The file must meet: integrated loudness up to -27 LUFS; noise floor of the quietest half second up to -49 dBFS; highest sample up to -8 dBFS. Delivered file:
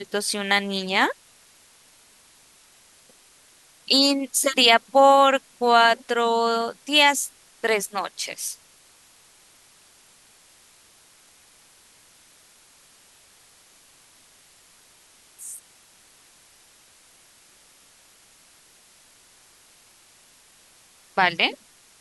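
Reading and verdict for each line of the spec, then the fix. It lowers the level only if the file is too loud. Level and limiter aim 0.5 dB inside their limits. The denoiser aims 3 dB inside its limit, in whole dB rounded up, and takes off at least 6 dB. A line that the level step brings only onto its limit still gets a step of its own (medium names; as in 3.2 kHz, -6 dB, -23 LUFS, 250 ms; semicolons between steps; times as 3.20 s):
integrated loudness -20.0 LUFS: fail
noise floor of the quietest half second -55 dBFS: pass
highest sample -1.5 dBFS: fail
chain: trim -7.5 dB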